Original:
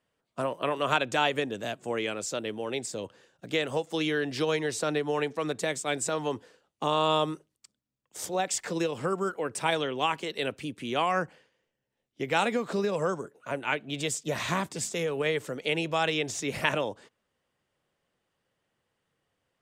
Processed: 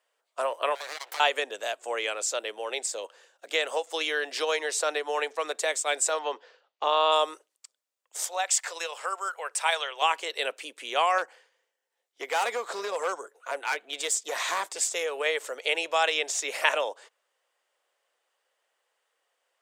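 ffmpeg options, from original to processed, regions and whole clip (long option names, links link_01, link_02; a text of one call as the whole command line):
ffmpeg -i in.wav -filter_complex "[0:a]asettb=1/sr,asplit=3[link_01][link_02][link_03];[link_01]atrim=end=0.754[link_04];[link_02]atrim=start=0.75:end=1.2,asetpts=PTS-STARTPTS,afade=type=in:duration=0.004:curve=qsin,afade=type=out:start_time=0.446:duration=0.004:curve=qsin,highpass=frequency=570:poles=1,acompressor=threshold=-31dB:ratio=8:attack=3.2:release=140:knee=1:detection=peak,aeval=exprs='abs(val(0))':channel_layout=same[link_05];[link_03]atrim=start=1.196[link_06];[link_04][link_05]acrossfade=duration=0.004:curve1=hsin:curve2=qsin[link_07];[link_07][link_06]acrossfade=duration=0.004:curve1=qsin:curve2=hsin,asettb=1/sr,asplit=3[link_08][link_09][link_10];[link_08]atrim=end=6.194[link_11];[link_09]atrim=start=6.19:end=7.12,asetpts=PTS-STARTPTS,afade=type=in:duration=0.004:curve=qsin,afade=type=out:start_time=0.926:duration=0.004:curve=qsin,lowpass=frequency=4900:width=0.5412,lowpass=frequency=4900:width=1.3066,deesser=0.65[link_12];[link_10]atrim=start=7.116[link_13];[link_11][link_12]acrossfade=duration=0.004:curve1=hsin:curve2=qsin[link_14];[link_14][link_13]acrossfade=duration=0.004:curve1=qsin:curve2=hsin,asettb=1/sr,asplit=3[link_15][link_16][link_17];[link_15]atrim=end=8.234[link_18];[link_16]atrim=start=8.23:end=10.02,asetpts=PTS-STARTPTS,afade=type=in:duration=0.004:curve=qsin,afade=type=out:start_time=1.786:duration=0.004:curve=qsin,highpass=750,aeval=exprs='val(0)+0.000501*(sin(2*PI*50*n/s)+sin(2*PI*2*50*n/s)/2+sin(2*PI*3*50*n/s)/3+sin(2*PI*4*50*n/s)/4+sin(2*PI*5*50*n/s)/5)':channel_layout=same[link_19];[link_17]atrim=start=10.016[link_20];[link_18][link_19]acrossfade=duration=0.004:curve1=hsin:curve2=qsin[link_21];[link_21][link_20]acrossfade=duration=0.004:curve1=qsin:curve2=hsin,asettb=1/sr,asplit=3[link_22][link_23][link_24];[link_22]atrim=end=11.184[link_25];[link_23]atrim=start=11.18:end=14.7,asetpts=PTS-STARTPTS,afade=type=in:duration=0.004:curve=qsin,afade=type=out:start_time=3.516:duration=0.004:curve=qsin,equalizer=frequency=2700:width=5.7:gain=-4,bandreject=frequency=600:width=10,asoftclip=type=hard:threshold=-24.5dB[link_26];[link_24]atrim=start=14.696[link_27];[link_25][link_26]acrossfade=duration=0.004:curve1=hsin:curve2=qsin[link_28];[link_28][link_27]acrossfade=duration=0.004:curve1=qsin:curve2=hsin,highpass=frequency=510:width=0.5412,highpass=frequency=510:width=1.3066,equalizer=frequency=7600:width=2:gain=3.5,volume=3.5dB" out.wav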